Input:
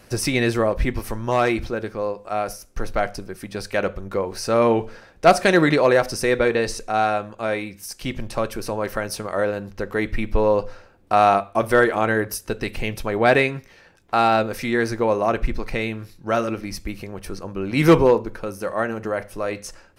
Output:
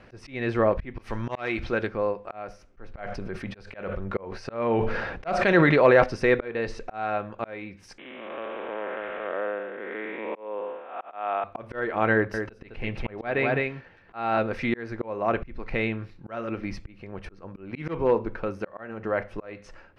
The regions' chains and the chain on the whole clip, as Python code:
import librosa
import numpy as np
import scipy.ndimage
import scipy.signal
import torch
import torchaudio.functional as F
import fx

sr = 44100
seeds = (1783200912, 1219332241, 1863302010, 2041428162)

y = fx.chain(x, sr, fx.high_shelf(hz=2000.0, db=10.5),
    fx.auto_swell(attack_ms=172.0), at=(0.98, 1.87))
y = fx.chain(y, sr, fx.peak_eq(hz=310.0, db=-4.0, octaves=0.22),
    fx.sustainer(db_per_s=45.0), at=(2.99, 6.04))
y = fx.chain(y, sr, fx.spec_blur(span_ms=319.0),
    fx.bessel_highpass(hz=410.0, order=4),
    fx.resample_bad(factor=6, down='none', up='filtered'), at=(7.98, 11.44))
y = fx.chain(y, sr, fx.high_shelf(hz=6500.0, db=-5.5),
    fx.echo_single(ms=208, db=-7.5), at=(12.13, 14.38))
y = scipy.signal.sosfilt(scipy.signal.cheby1(2, 1.0, 2400.0, 'lowpass', fs=sr, output='sos'), y)
y = fx.auto_swell(y, sr, attack_ms=401.0)